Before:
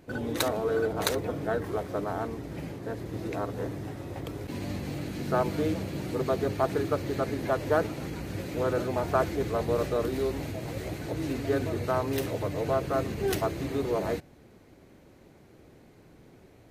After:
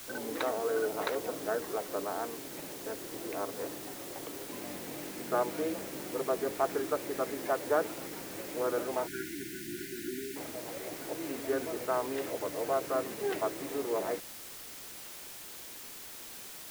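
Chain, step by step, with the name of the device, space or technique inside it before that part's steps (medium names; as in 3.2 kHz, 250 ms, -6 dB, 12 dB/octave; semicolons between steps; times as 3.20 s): wax cylinder (band-pass 330–2400 Hz; wow and flutter; white noise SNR 11 dB); spectral selection erased 9.07–10.36 s, 390–1400 Hz; trim -2.5 dB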